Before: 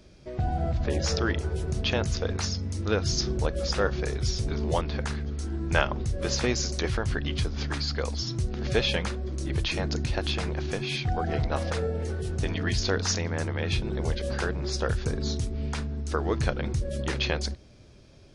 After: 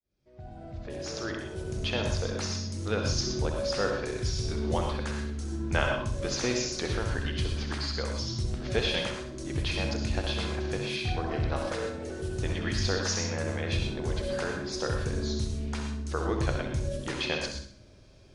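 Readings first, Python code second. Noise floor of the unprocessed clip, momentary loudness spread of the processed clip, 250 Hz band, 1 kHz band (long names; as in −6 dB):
−51 dBFS, 7 LU, −1.5 dB, −2.5 dB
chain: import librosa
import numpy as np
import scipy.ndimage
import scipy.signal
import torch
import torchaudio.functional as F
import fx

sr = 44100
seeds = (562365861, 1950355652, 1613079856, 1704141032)

y = fx.fade_in_head(x, sr, length_s=2.1)
y = fx.room_flutter(y, sr, wall_m=11.0, rt60_s=0.5)
y = fx.rev_gated(y, sr, seeds[0], gate_ms=140, shape='rising', drr_db=3.5)
y = y * librosa.db_to_amplitude(-4.0)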